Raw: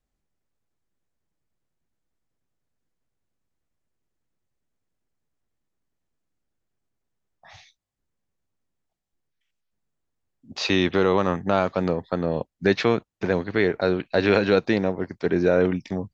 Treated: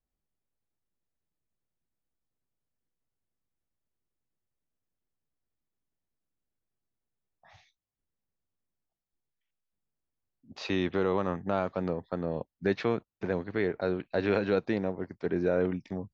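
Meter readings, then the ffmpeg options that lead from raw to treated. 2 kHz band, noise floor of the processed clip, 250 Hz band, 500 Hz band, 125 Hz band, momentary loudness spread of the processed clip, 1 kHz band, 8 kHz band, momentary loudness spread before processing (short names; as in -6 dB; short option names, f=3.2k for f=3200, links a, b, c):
-10.0 dB, under -85 dBFS, -7.5 dB, -7.5 dB, -7.5 dB, 6 LU, -8.5 dB, n/a, 7 LU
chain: -af "highshelf=f=2.8k:g=-8.5,volume=-7.5dB"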